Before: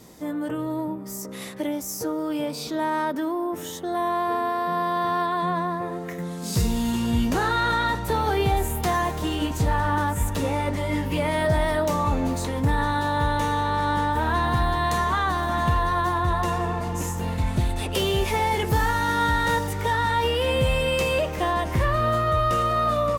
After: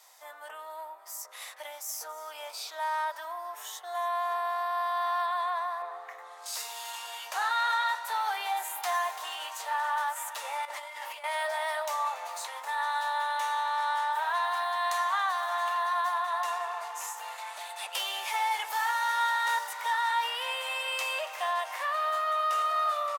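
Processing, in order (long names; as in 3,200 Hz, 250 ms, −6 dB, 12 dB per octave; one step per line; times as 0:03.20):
Butterworth high-pass 700 Hz 36 dB per octave
0:05.82–0:06.46: spectral tilt −3.5 dB per octave
echo with shifted repeats 282 ms, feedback 55%, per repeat +48 Hz, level −18 dB
0:10.65–0:11.24: compressor whose output falls as the input rises −36 dBFS, ratio −0.5
level −4 dB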